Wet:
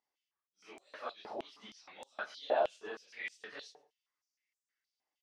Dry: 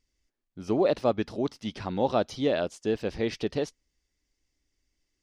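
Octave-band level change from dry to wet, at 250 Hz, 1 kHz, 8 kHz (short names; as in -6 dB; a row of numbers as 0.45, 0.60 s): -26.0 dB, -7.5 dB, under -10 dB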